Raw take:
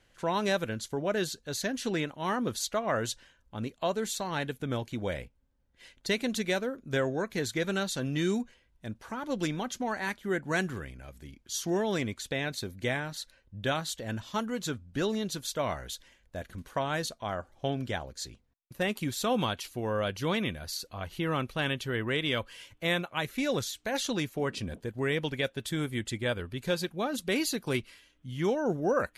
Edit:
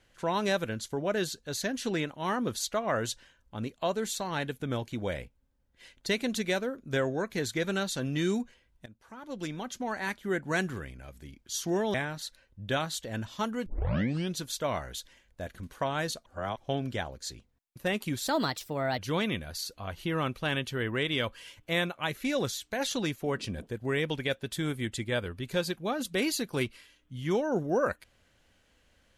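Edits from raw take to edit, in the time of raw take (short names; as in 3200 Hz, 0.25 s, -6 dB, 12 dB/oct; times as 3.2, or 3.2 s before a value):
8.86–10.1 fade in, from -18 dB
11.94–12.89 cut
14.61 tape start 0.70 s
17.21–17.52 reverse
19.22–20.12 speed 126%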